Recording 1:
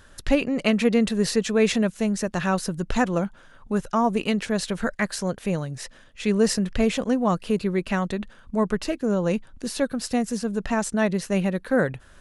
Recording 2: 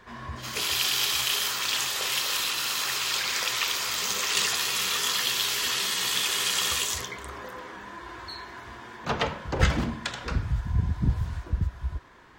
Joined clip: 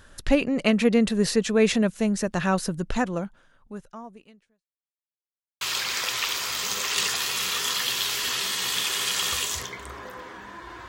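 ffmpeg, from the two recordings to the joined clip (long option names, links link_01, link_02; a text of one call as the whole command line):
ffmpeg -i cue0.wav -i cue1.wav -filter_complex "[0:a]apad=whole_dur=10.88,atrim=end=10.88,asplit=2[link_01][link_02];[link_01]atrim=end=4.67,asetpts=PTS-STARTPTS,afade=type=out:start_time=2.68:duration=1.99:curve=qua[link_03];[link_02]atrim=start=4.67:end=5.61,asetpts=PTS-STARTPTS,volume=0[link_04];[1:a]atrim=start=3:end=8.27,asetpts=PTS-STARTPTS,afade=type=in:duration=0.004:curve=hsin[link_05];[link_03][link_04][link_05]concat=n=3:v=0:a=1" out.wav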